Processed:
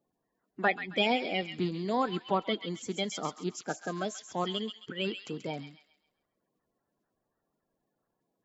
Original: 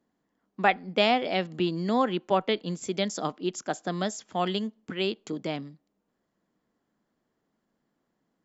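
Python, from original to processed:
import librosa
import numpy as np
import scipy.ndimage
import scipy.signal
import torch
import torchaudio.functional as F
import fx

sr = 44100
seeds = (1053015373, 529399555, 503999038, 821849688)

p1 = fx.spec_quant(x, sr, step_db=30)
p2 = p1 + fx.echo_wet_highpass(p1, sr, ms=134, feedback_pct=37, hz=1900.0, wet_db=-6.5, dry=0)
y = F.gain(torch.from_numpy(p2), -4.0).numpy()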